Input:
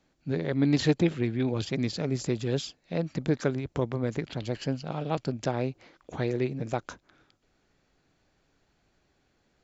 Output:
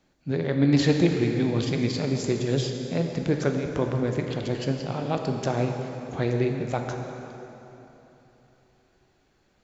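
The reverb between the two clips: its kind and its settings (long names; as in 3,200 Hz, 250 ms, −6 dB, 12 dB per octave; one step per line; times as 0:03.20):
dense smooth reverb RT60 3.4 s, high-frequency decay 0.75×, DRR 3 dB
level +2 dB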